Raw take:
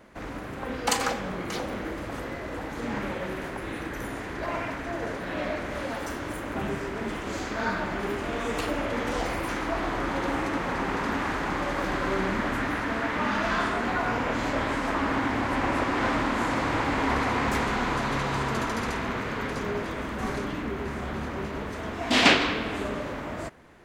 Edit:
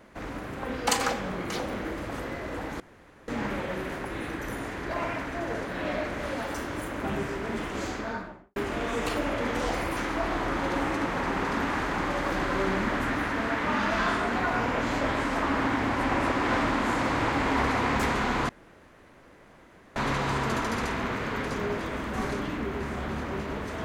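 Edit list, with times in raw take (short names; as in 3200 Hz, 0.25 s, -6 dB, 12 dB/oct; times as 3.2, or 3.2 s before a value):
2.8 insert room tone 0.48 s
7.33–8.08 studio fade out
18.01 insert room tone 1.47 s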